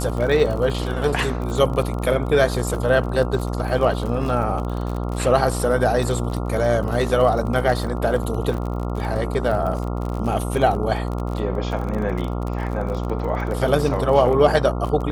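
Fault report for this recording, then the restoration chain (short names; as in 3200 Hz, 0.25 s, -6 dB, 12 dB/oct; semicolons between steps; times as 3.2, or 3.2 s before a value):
buzz 60 Hz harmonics 23 -25 dBFS
crackle 39/s -27 dBFS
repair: de-click; de-hum 60 Hz, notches 23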